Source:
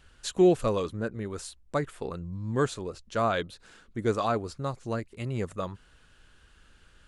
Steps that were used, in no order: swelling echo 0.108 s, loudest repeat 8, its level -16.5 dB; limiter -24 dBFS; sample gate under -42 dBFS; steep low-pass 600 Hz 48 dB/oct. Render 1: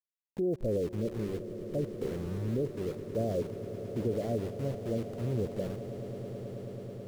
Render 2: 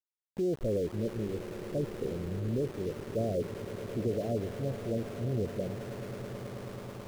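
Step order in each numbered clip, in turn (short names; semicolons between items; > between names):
steep low-pass > sample gate > limiter > swelling echo; steep low-pass > limiter > swelling echo > sample gate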